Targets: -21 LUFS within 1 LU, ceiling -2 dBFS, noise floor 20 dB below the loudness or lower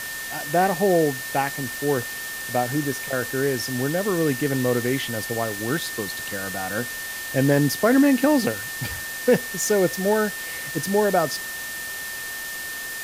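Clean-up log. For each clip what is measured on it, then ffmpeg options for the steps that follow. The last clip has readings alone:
steady tone 1800 Hz; tone level -32 dBFS; noise floor -32 dBFS; noise floor target -44 dBFS; loudness -23.5 LUFS; peak -6.5 dBFS; loudness target -21.0 LUFS
-> -af "bandreject=f=1.8k:w=30"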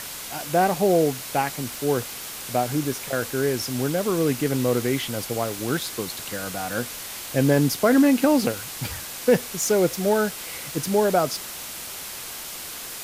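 steady tone none; noise floor -36 dBFS; noise floor target -44 dBFS
-> -af "afftdn=nr=8:nf=-36"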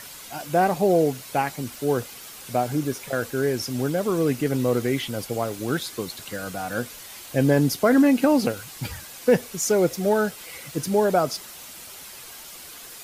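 noise floor -42 dBFS; noise floor target -44 dBFS
-> -af "afftdn=nr=6:nf=-42"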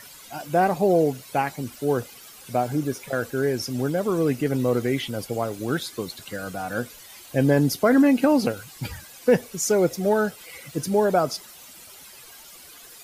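noise floor -46 dBFS; loudness -23.5 LUFS; peak -7.0 dBFS; loudness target -21.0 LUFS
-> -af "volume=2.5dB"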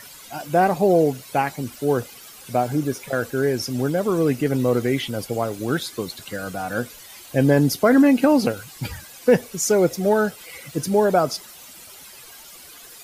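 loudness -21.0 LUFS; peak -4.5 dBFS; noise floor -43 dBFS

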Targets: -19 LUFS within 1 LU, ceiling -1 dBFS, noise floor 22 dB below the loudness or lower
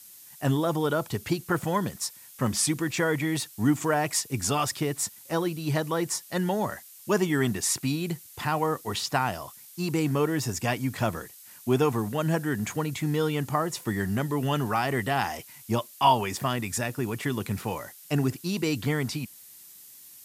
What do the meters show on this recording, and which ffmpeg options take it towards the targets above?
noise floor -49 dBFS; noise floor target -50 dBFS; loudness -28.0 LUFS; peak -7.5 dBFS; loudness target -19.0 LUFS
-> -af "afftdn=nr=6:nf=-49"
-af "volume=9dB,alimiter=limit=-1dB:level=0:latency=1"

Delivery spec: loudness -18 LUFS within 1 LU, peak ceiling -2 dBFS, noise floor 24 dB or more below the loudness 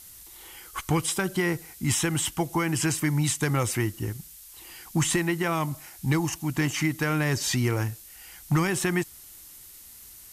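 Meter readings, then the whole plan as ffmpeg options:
noise floor -48 dBFS; noise floor target -51 dBFS; loudness -26.5 LUFS; peak -12.5 dBFS; loudness target -18.0 LUFS
-> -af "afftdn=nr=6:nf=-48"
-af "volume=8.5dB"

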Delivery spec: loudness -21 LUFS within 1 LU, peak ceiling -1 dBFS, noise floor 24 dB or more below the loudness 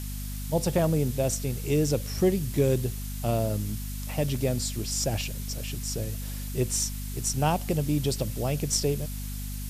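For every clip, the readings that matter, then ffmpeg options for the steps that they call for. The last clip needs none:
hum 50 Hz; harmonics up to 250 Hz; hum level -32 dBFS; noise floor -34 dBFS; noise floor target -52 dBFS; loudness -28.0 LUFS; peak -12.0 dBFS; loudness target -21.0 LUFS
-> -af "bandreject=f=50:t=h:w=6,bandreject=f=100:t=h:w=6,bandreject=f=150:t=h:w=6,bandreject=f=200:t=h:w=6,bandreject=f=250:t=h:w=6"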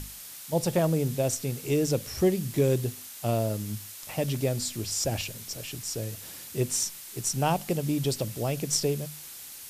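hum none; noise floor -44 dBFS; noise floor target -53 dBFS
-> -af "afftdn=nr=9:nf=-44"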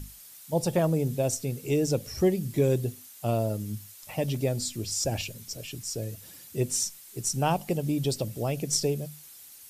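noise floor -49 dBFS; noise floor target -53 dBFS
-> -af "afftdn=nr=6:nf=-49"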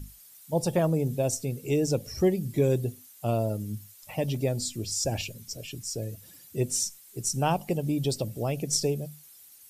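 noise floor -53 dBFS; loudness -29.0 LUFS; peak -11.0 dBFS; loudness target -21.0 LUFS
-> -af "volume=8dB"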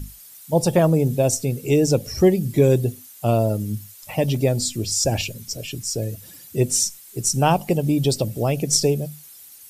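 loudness -21.0 LUFS; peak -3.0 dBFS; noise floor -45 dBFS

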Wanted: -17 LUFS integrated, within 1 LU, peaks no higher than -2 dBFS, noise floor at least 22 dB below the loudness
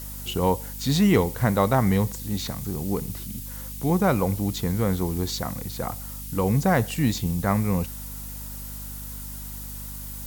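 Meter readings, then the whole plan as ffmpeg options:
hum 50 Hz; harmonics up to 250 Hz; hum level -36 dBFS; noise floor -36 dBFS; noise floor target -48 dBFS; loudness -25.5 LUFS; peak -7.5 dBFS; loudness target -17.0 LUFS
-> -af "bandreject=f=50:t=h:w=6,bandreject=f=100:t=h:w=6,bandreject=f=150:t=h:w=6,bandreject=f=200:t=h:w=6,bandreject=f=250:t=h:w=6"
-af "afftdn=nr=12:nf=-36"
-af "volume=8.5dB,alimiter=limit=-2dB:level=0:latency=1"

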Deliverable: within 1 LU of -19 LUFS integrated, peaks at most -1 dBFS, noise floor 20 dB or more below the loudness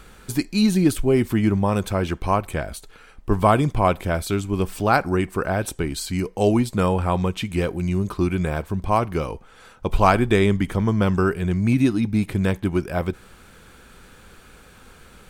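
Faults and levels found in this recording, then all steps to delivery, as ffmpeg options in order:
loudness -22.0 LUFS; peak -2.5 dBFS; loudness target -19.0 LUFS
-> -af "volume=3dB,alimiter=limit=-1dB:level=0:latency=1"

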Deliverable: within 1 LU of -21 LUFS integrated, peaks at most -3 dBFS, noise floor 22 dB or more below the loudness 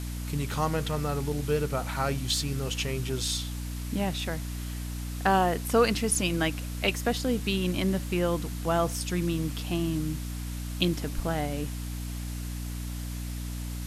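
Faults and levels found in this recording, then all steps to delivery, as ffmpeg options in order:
hum 60 Hz; harmonics up to 300 Hz; hum level -32 dBFS; noise floor -35 dBFS; noise floor target -52 dBFS; loudness -29.5 LUFS; peak -10.0 dBFS; loudness target -21.0 LUFS
-> -af "bandreject=f=60:t=h:w=4,bandreject=f=120:t=h:w=4,bandreject=f=180:t=h:w=4,bandreject=f=240:t=h:w=4,bandreject=f=300:t=h:w=4"
-af "afftdn=nr=17:nf=-35"
-af "volume=8.5dB,alimiter=limit=-3dB:level=0:latency=1"

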